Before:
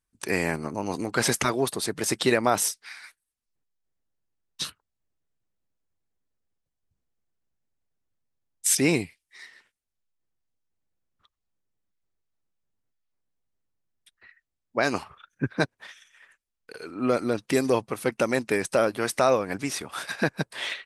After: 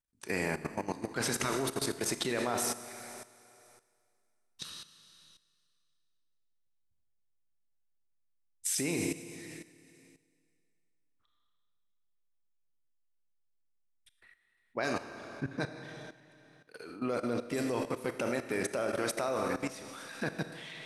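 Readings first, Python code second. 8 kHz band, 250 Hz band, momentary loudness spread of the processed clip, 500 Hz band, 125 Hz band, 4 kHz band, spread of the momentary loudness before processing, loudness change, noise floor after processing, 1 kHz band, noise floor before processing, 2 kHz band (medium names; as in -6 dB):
-8.0 dB, -7.5 dB, 15 LU, -9.0 dB, -8.0 dB, -8.0 dB, 12 LU, -8.5 dB, -74 dBFS, -8.5 dB, -84 dBFS, -8.5 dB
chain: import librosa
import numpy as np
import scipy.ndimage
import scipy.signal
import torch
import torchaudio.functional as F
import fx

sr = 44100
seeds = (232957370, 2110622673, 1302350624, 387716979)

y = fx.rev_schroeder(x, sr, rt60_s=2.2, comb_ms=26, drr_db=4.5)
y = fx.level_steps(y, sr, step_db=14)
y = F.gain(torch.from_numpy(y), -4.0).numpy()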